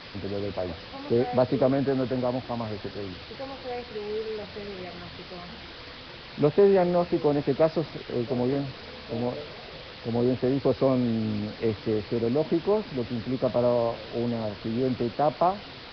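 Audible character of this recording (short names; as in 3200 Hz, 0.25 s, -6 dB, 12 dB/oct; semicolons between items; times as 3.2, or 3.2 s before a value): a quantiser's noise floor 6-bit, dither triangular; Nellymoser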